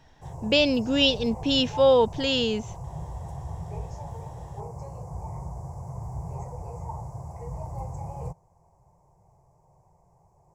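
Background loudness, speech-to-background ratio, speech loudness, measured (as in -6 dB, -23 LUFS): -38.0 LUFS, 15.5 dB, -22.5 LUFS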